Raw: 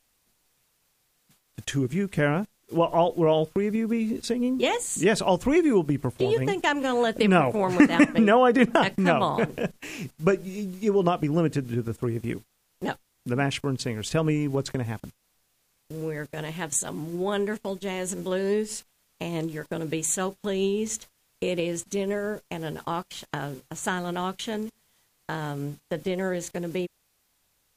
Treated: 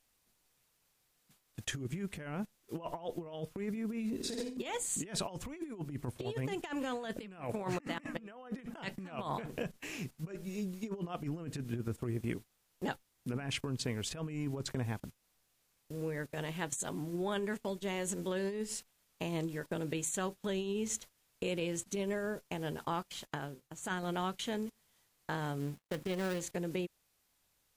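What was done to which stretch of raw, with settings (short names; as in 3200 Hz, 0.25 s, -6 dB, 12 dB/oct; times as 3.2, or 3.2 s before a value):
4.15–4.57 flutter echo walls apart 8.7 m, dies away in 1.4 s
23.27–24.03 upward expander, over -45 dBFS
25.6–26.41 switching dead time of 0.18 ms
whole clip: dynamic EQ 440 Hz, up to -3 dB, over -29 dBFS, Q 0.77; negative-ratio compressor -28 dBFS, ratio -0.5; gain -8.5 dB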